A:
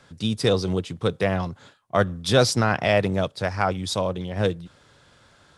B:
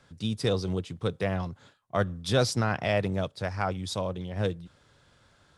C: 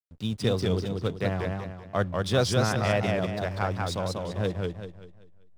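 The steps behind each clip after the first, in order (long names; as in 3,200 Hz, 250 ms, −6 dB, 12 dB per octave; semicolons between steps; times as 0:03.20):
low-shelf EQ 120 Hz +5.5 dB; level −7 dB
slack as between gear wheels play −41 dBFS; feedback echo with a swinging delay time 193 ms, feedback 37%, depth 131 cents, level −3 dB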